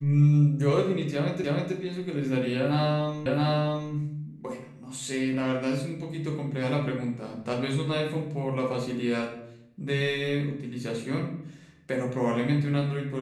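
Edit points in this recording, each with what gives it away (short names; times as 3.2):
1.44 repeat of the last 0.31 s
3.26 repeat of the last 0.67 s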